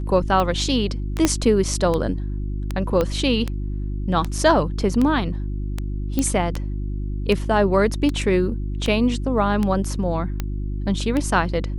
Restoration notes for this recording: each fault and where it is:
hum 50 Hz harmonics 7 -26 dBFS
tick 78 rpm -11 dBFS
1.25 pop -3 dBFS
3.01 pop -9 dBFS
6.19 pop -8 dBFS

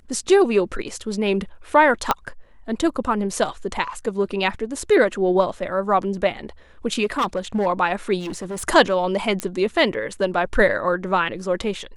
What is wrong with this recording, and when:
2.11 pop -3 dBFS
7.04–7.67 clipped -17 dBFS
8.19–8.64 clipped -25.5 dBFS
9.4 pop -9 dBFS

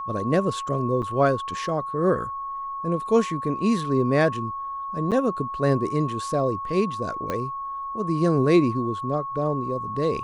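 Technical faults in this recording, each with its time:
tone 1100 Hz -29 dBFS
1.02–1.03 gap 5.9 ms
5.11–5.12 gap 7.9 ms
7.3 pop -14 dBFS

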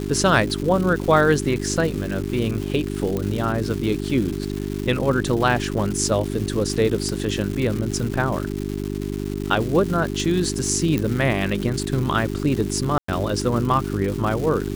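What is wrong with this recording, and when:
crackle 370/s -27 dBFS
hum 50 Hz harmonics 8 -27 dBFS
3.17 pop -12 dBFS
7.09 pop
10.98 pop -10 dBFS
12.98–13.08 gap 0.104 s

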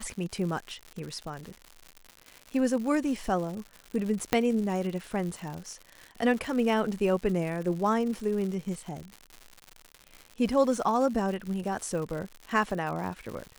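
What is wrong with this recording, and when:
crackle 170/s -35 dBFS
4.33 pop -8 dBFS
8.15 gap 2.6 ms

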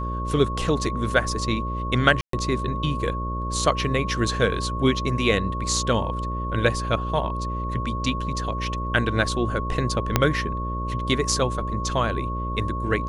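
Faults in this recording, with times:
buzz 60 Hz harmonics 10 -29 dBFS
tone 1100 Hz -30 dBFS
2.21–2.33 gap 0.123 s
10.16 pop -2 dBFS

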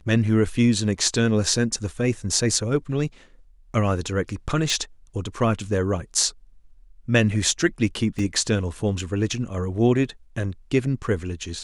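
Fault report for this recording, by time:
4.7 pop
8.19 gap 2.5 ms

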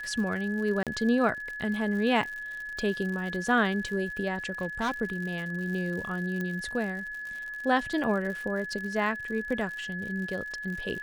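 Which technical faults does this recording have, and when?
crackle 89/s -36 dBFS
tone 1700 Hz -35 dBFS
0.83–0.87 gap 37 ms
4.61–4.91 clipped -24.5 dBFS
6.41 pop -21 dBFS

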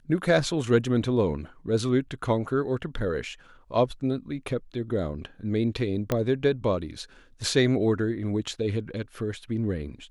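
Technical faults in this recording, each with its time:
6.12 pop -11 dBFS

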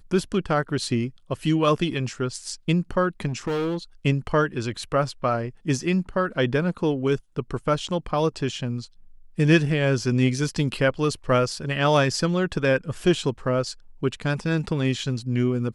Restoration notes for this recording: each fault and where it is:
3.27–3.77 clipped -22.5 dBFS

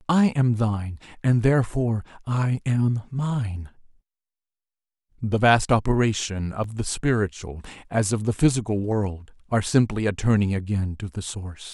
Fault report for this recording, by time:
6.64 gap 2.4 ms

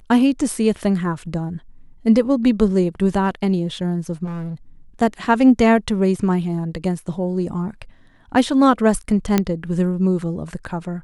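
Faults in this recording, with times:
4.24–4.54 clipped -25 dBFS
9.38 pop -3 dBFS

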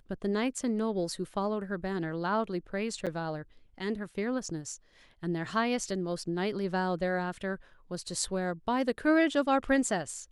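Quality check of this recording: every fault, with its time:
3.06–3.07 gap 7.2 ms

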